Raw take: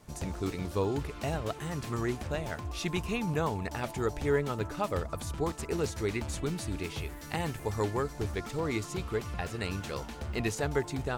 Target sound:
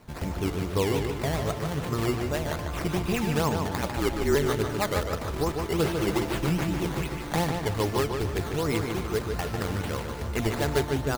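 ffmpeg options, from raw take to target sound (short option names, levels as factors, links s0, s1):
-filter_complex "[0:a]asettb=1/sr,asplit=3[s0][s1][s2];[s0]atrim=end=3.814[s3];[s1]atrim=start=3.81:end=4.35,asetpts=PTS-STARTPTS,afade=t=in:d=0.004:c=qsin,afade=t=out:st=0.536:d=0.004:c=qsin,afreqshift=-48[s4];[s2]atrim=start=4.346[s5];[s3][s4]acrossfade=d=0.004:c1=hsin:c2=qsin[s6];[s6][s5]acrossfade=d=0.004:c1=qsin:c2=hsin,asettb=1/sr,asplit=3[s7][s8][s9];[s7]atrim=end=5.794[s10];[s8]atrim=start=5.79:end=7.44,asetpts=PTS-STARTPTS,afade=t=in:d=0.004:c=qsin,afade=t=out:st=1.646:d=0.004:c=qsin,aecho=1:1:5.9:0.86,atrim=end_sample=72765[s11];[s9]atrim=start=7.436[s12];[s10][s11]acrossfade=d=0.004:c1=hsin:c2=qsin[s13];[s13][s12]acrossfade=d=0.004:c1=qsin:c2=hsin,asplit=2[s14][s15];[s15]aecho=0:1:1041:0.126[s16];[s14][s16]amix=inputs=2:normalize=0,acrusher=samples=12:mix=1:aa=0.000001:lfo=1:lforange=12:lforate=2.5,asplit=2[s17][s18];[s18]adelay=148,lowpass=f=4600:p=1,volume=0.562,asplit=2[s19][s20];[s20]adelay=148,lowpass=f=4600:p=1,volume=0.46,asplit=2[s21][s22];[s22]adelay=148,lowpass=f=4600:p=1,volume=0.46,asplit=2[s23][s24];[s24]adelay=148,lowpass=f=4600:p=1,volume=0.46,asplit=2[s25][s26];[s26]adelay=148,lowpass=f=4600:p=1,volume=0.46,asplit=2[s27][s28];[s28]adelay=148,lowpass=f=4600:p=1,volume=0.46[s29];[s19][s21][s23][s25][s27][s29]amix=inputs=6:normalize=0[s30];[s17][s30]amix=inputs=2:normalize=0,volume=1.58"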